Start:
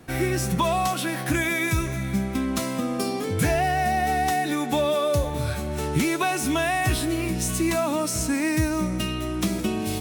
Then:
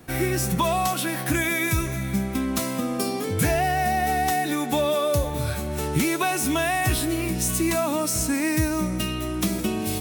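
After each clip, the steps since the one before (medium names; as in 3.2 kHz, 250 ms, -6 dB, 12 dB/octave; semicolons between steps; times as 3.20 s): treble shelf 12 kHz +10.5 dB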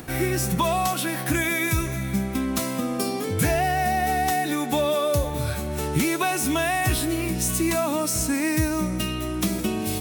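upward compressor, threshold -33 dBFS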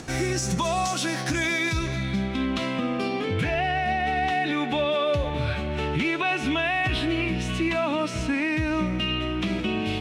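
low-pass sweep 6.4 kHz -> 2.9 kHz, 0.98–2.78 s; peak limiter -16.5 dBFS, peak gain reduction 7 dB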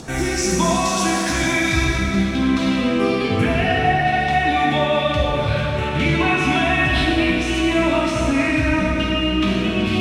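LFO notch sine 2.1 Hz 500–5100 Hz; plate-style reverb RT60 2.9 s, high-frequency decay 0.75×, DRR -4 dB; trim +3 dB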